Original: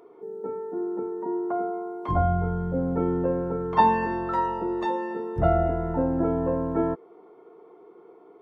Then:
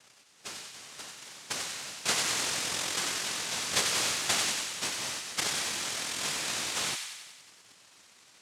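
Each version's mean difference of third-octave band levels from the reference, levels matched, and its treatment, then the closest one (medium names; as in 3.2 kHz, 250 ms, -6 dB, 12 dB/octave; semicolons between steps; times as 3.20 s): 20.5 dB: FFT band-reject 130–960 Hz; compression 5:1, threshold -32 dBFS, peak gain reduction 11 dB; noise-vocoded speech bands 1; on a send: feedback echo behind a high-pass 93 ms, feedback 62%, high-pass 1.4 kHz, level -5 dB; on the sum: trim +6.5 dB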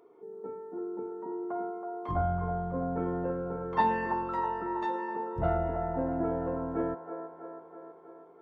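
2.5 dB: dynamic bell 1.8 kHz, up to +5 dB, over -49 dBFS, Q 4.1; feedback echo behind a band-pass 325 ms, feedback 63%, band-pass 800 Hz, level -6 dB; loudspeaker Doppler distortion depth 0.1 ms; trim -7.5 dB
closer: second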